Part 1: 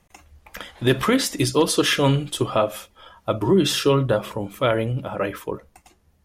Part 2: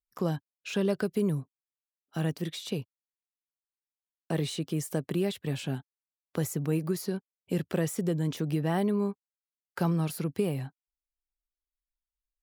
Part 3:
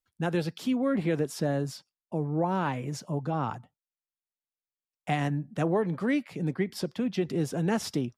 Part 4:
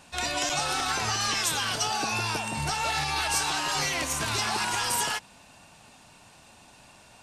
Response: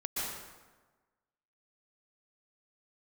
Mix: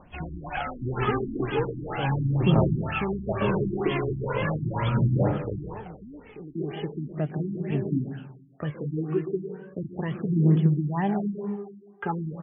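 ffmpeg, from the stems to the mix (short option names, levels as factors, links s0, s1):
-filter_complex "[0:a]acrossover=split=180[s0][s1];[s1]acompressor=threshold=0.0398:ratio=4[s2];[s0][s2]amix=inputs=2:normalize=0,volume=0.631,asplit=2[s3][s4];[s4]volume=0.631[s5];[1:a]equalizer=f=510:t=o:w=0.27:g=-7,flanger=delay=5:depth=8.4:regen=50:speed=0.23:shape=sinusoidal,adelay=2250,volume=1.26,asplit=2[s6][s7];[s7]volume=0.473[s8];[2:a]acompressor=threshold=0.0316:ratio=6,volume=0.422,asplit=2[s9][s10];[s10]volume=0.168[s11];[3:a]volume=0.596[s12];[s3][s9]amix=inputs=2:normalize=0,acompressor=threshold=0.0282:ratio=6,volume=1[s13];[4:a]atrim=start_sample=2205[s14];[s5][s8][s11]amix=inputs=3:normalize=0[s15];[s15][s14]afir=irnorm=-1:irlink=0[s16];[s6][s12][s13][s16]amix=inputs=4:normalize=0,aphaser=in_gain=1:out_gain=1:delay=2.9:decay=0.59:speed=0.38:type=triangular,afftfilt=real='re*lt(b*sr/1024,340*pow(3500/340,0.5+0.5*sin(2*PI*2.1*pts/sr)))':imag='im*lt(b*sr/1024,340*pow(3500/340,0.5+0.5*sin(2*PI*2.1*pts/sr)))':win_size=1024:overlap=0.75"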